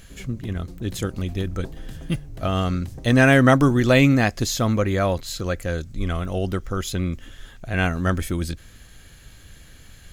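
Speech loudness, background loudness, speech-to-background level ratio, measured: -22.0 LUFS, -41.5 LUFS, 19.5 dB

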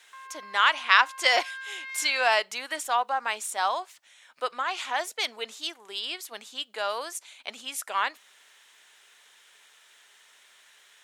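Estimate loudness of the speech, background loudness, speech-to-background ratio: -27.0 LUFS, -39.5 LUFS, 12.5 dB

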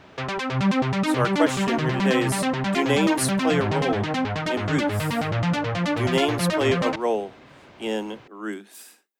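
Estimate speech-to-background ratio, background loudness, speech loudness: -2.5 dB, -24.5 LUFS, -27.0 LUFS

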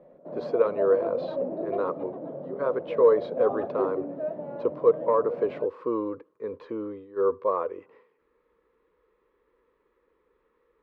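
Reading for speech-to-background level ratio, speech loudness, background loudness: 6.5 dB, -27.5 LUFS, -34.0 LUFS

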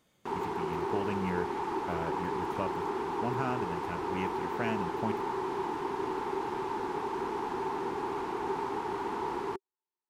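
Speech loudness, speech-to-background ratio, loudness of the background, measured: -38.5 LUFS, -4.0 dB, -34.5 LUFS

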